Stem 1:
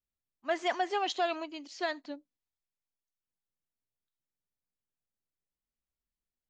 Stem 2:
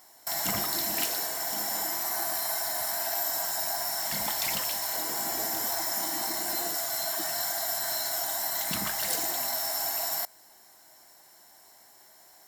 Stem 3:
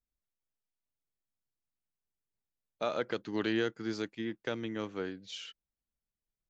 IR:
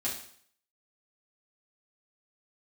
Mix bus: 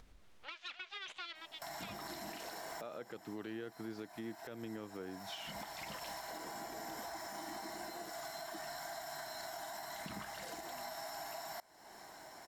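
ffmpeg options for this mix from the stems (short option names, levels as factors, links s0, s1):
-filter_complex "[0:a]aeval=exprs='abs(val(0))':c=same,bandpass=f=3400:t=q:w=2:csg=0,volume=0.299[s0];[1:a]alimiter=limit=0.075:level=0:latency=1:release=26,adelay=1350,volume=0.133[s1];[2:a]volume=0.562[s2];[s0][s1][s2]amix=inputs=3:normalize=0,aemphasis=mode=reproduction:type=75fm,acompressor=mode=upward:threshold=0.0224:ratio=2.5,alimiter=level_in=3.55:limit=0.0631:level=0:latency=1:release=260,volume=0.282"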